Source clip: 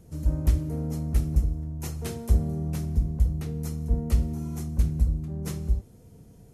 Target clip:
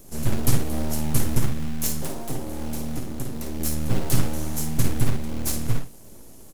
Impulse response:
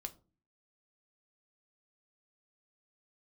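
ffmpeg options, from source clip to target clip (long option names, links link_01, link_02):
-filter_complex "[0:a]highshelf=frequency=7000:gain=8,asplit=2[link_01][link_02];[1:a]atrim=start_sample=2205,atrim=end_sample=3969[link_03];[link_02][link_03]afir=irnorm=-1:irlink=0,volume=0.5dB[link_04];[link_01][link_04]amix=inputs=2:normalize=0,aeval=exprs='abs(val(0))':channel_layout=same,asettb=1/sr,asplit=3[link_05][link_06][link_07];[link_05]atrim=end=2.034[link_08];[link_06]atrim=start=2.03:end=3.6,asetpts=PTS-STARTPTS,afade=type=in:duration=0.004:curve=qsin,afade=type=out:start_time=1.566:duration=0.004:curve=qsin,acrossover=split=230|1500[link_09][link_10][link_11];[link_09]acompressor=threshold=-29dB:ratio=4[link_12];[link_10]acompressor=threshold=-32dB:ratio=4[link_13];[link_11]acompressor=threshold=-45dB:ratio=4[link_14];[link_12][link_13][link_14]amix=inputs=3:normalize=0[link_15];[link_07]atrim=start=3.596[link_16];[link_08][link_15]acrossfade=duration=0.004:curve1=hsin:curve2=qsin[link_17];[link_17][link_16]acrossfade=duration=0.004:curve1=qsin:curve2=hsin,aecho=1:1:35|53:0.168|0.355,acrossover=split=3600[link_18][link_19];[link_18]acrusher=bits=5:mode=log:mix=0:aa=0.000001[link_20];[link_19]acontrast=75[link_21];[link_20][link_21]amix=inputs=2:normalize=0"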